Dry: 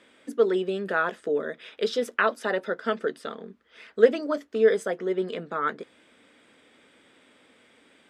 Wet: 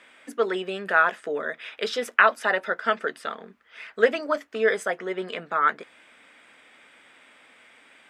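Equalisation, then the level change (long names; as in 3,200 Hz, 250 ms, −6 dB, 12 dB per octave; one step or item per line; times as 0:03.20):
flat-topped bell 1,300 Hz +9 dB 2.4 octaves
high-shelf EQ 2,500 Hz +8.5 dB
−4.5 dB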